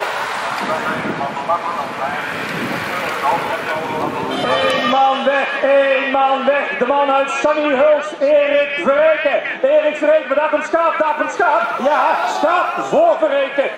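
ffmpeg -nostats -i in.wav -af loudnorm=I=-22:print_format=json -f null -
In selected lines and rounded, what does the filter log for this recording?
"input_i" : "-16.0",
"input_tp" : "-3.2",
"input_lra" : "5.6",
"input_thresh" : "-26.0",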